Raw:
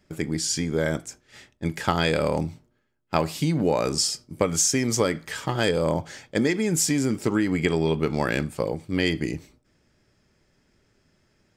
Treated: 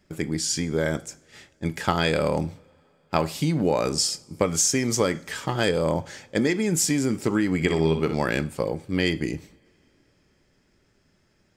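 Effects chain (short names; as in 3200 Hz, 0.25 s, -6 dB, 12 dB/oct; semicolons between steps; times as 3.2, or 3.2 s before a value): 7.55–8.14 flutter echo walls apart 10.6 m, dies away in 0.44 s; two-slope reverb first 0.49 s, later 4.2 s, from -22 dB, DRR 17.5 dB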